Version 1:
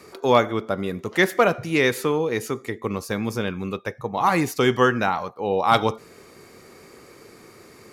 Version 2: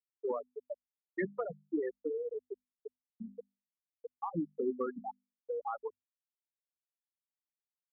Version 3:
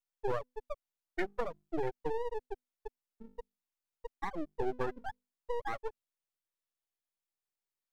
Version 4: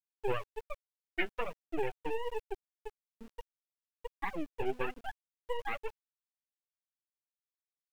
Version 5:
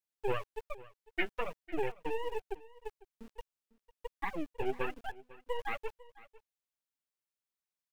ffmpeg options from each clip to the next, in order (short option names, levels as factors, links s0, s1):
-filter_complex "[0:a]afftfilt=real='re*gte(hypot(re,im),0.631)':imag='im*gte(hypot(re,im),0.631)':win_size=1024:overlap=0.75,bandreject=f=50:t=h:w=6,bandreject=f=100:t=h:w=6,bandreject=f=150:t=h:w=6,bandreject=f=200:t=h:w=6,bandreject=f=250:t=h:w=6,acrossover=split=300[s0][s1];[s1]acompressor=threshold=0.0355:ratio=10[s2];[s0][s2]amix=inputs=2:normalize=0,volume=0.447"
-filter_complex "[0:a]acrossover=split=380[s0][s1];[s0]alimiter=level_in=3.55:limit=0.0631:level=0:latency=1:release=31,volume=0.282[s2];[s2][s1]amix=inputs=2:normalize=0,lowshelf=f=260:t=q:w=1.5:g=-7.5,aeval=exprs='max(val(0),0)':c=same,volume=1.58"
-af "flanger=delay=2.1:depth=7.9:regen=36:speed=1.2:shape=triangular,lowpass=f=2700:t=q:w=6.8,aeval=exprs='val(0)*gte(abs(val(0)),0.00211)':c=same,volume=1.26"
-af "aecho=1:1:500:0.1"